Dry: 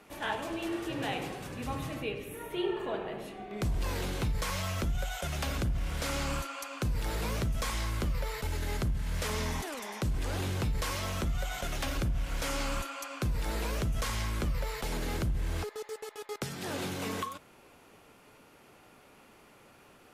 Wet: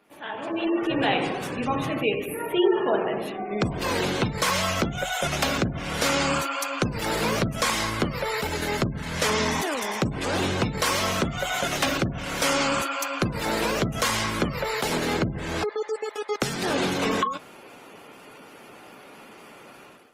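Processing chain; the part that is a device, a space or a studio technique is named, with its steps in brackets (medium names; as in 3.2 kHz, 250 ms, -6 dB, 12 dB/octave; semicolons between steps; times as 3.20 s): noise-suppressed video call (high-pass 170 Hz 12 dB/octave; spectral gate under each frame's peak -25 dB strong; level rider gain up to 16 dB; trim -4 dB; Opus 20 kbps 48 kHz)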